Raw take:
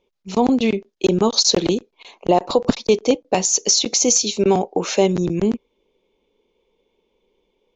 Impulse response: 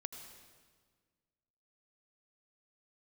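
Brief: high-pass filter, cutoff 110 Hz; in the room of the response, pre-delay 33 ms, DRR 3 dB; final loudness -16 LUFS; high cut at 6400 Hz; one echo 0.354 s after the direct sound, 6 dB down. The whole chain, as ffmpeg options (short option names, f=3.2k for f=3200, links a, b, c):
-filter_complex "[0:a]highpass=110,lowpass=6.4k,aecho=1:1:354:0.501,asplit=2[a][b];[1:a]atrim=start_sample=2205,adelay=33[c];[b][c]afir=irnorm=-1:irlink=0,volume=-0.5dB[d];[a][d]amix=inputs=2:normalize=0,volume=0.5dB"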